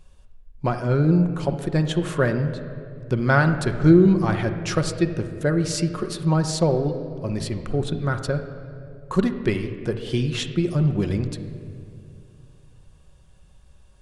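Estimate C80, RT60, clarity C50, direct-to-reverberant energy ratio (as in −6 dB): 10.5 dB, 2.5 s, 9.0 dB, 6.0 dB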